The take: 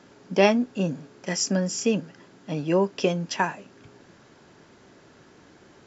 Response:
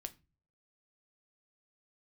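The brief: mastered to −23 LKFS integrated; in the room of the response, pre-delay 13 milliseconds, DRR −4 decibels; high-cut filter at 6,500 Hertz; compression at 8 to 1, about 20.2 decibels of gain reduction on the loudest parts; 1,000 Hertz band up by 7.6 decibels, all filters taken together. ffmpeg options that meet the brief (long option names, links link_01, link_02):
-filter_complex "[0:a]lowpass=6500,equalizer=frequency=1000:width_type=o:gain=9,acompressor=threshold=-32dB:ratio=8,asplit=2[link_01][link_02];[1:a]atrim=start_sample=2205,adelay=13[link_03];[link_02][link_03]afir=irnorm=-1:irlink=0,volume=7.5dB[link_04];[link_01][link_04]amix=inputs=2:normalize=0,volume=8.5dB"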